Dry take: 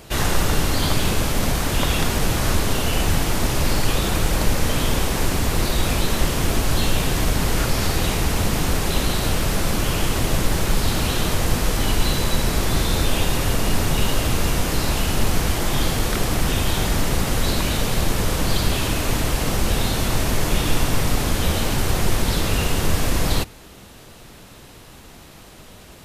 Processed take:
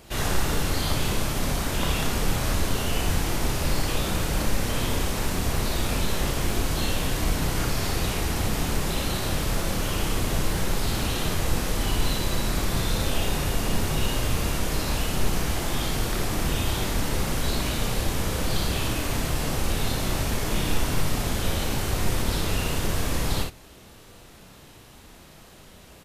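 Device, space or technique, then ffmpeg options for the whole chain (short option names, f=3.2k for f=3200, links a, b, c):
slapback doubling: -filter_complex "[0:a]asplit=3[a][b][c];[b]adelay=33,volume=-6dB[d];[c]adelay=60,volume=-5dB[e];[a][d][e]amix=inputs=3:normalize=0,volume=-7dB"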